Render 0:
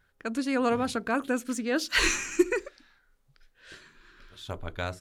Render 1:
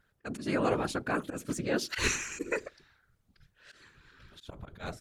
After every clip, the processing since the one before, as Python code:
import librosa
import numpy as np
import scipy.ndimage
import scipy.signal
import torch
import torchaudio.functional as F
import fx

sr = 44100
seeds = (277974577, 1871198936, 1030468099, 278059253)

y = fx.auto_swell(x, sr, attack_ms=107.0)
y = fx.whisperise(y, sr, seeds[0])
y = F.gain(torch.from_numpy(y), -3.0).numpy()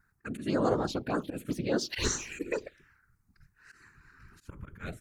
y = fx.env_phaser(x, sr, low_hz=550.0, high_hz=2500.0, full_db=-26.0)
y = F.gain(torch.from_numpy(y), 2.0).numpy()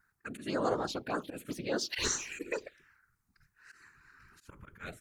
y = fx.low_shelf(x, sr, hz=360.0, db=-10.0)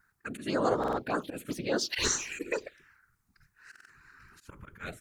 y = fx.buffer_glitch(x, sr, at_s=(0.79, 3.71), block=2048, repeats=3)
y = F.gain(torch.from_numpy(y), 3.5).numpy()